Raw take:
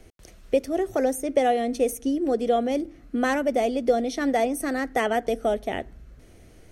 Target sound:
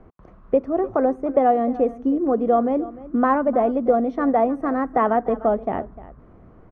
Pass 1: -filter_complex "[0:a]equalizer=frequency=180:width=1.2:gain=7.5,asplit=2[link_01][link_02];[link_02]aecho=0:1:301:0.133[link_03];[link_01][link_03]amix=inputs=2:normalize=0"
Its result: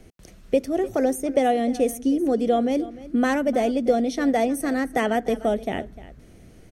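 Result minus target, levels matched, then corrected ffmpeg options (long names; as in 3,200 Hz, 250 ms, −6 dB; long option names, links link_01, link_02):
1,000 Hz band −3.5 dB
-filter_complex "[0:a]lowpass=frequency=1100:width_type=q:width=4.5,equalizer=frequency=180:width=1.2:gain=7.5,asplit=2[link_01][link_02];[link_02]aecho=0:1:301:0.133[link_03];[link_01][link_03]amix=inputs=2:normalize=0"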